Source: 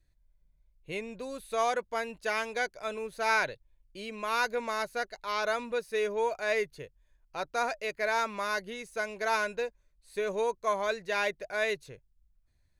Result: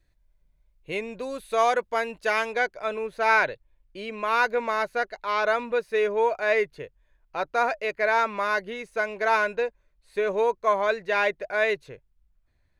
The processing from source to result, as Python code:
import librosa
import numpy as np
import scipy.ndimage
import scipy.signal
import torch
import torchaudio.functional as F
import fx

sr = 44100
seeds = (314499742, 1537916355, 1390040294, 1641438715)

y = fx.bass_treble(x, sr, bass_db=-5, treble_db=fx.steps((0.0, -6.0), (2.51, -13.0)))
y = y * 10.0 ** (7.0 / 20.0)